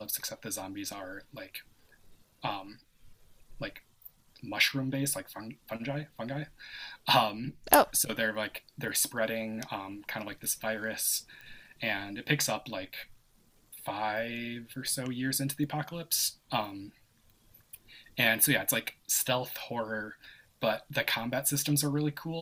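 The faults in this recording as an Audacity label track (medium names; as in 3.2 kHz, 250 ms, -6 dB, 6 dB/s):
11.410000	11.410000	pop -32 dBFS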